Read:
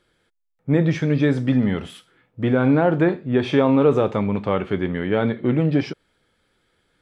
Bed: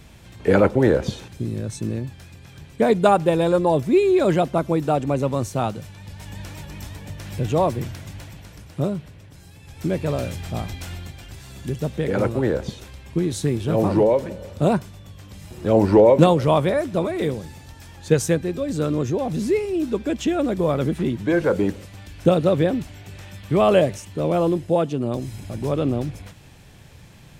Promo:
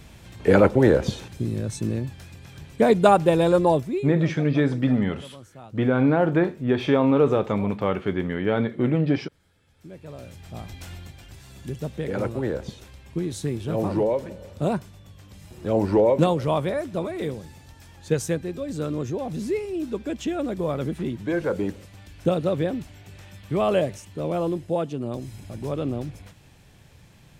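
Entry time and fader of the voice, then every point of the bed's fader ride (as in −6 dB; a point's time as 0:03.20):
3.35 s, −2.5 dB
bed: 0:03.71 0 dB
0:04.20 −21 dB
0:09.79 −21 dB
0:10.84 −5.5 dB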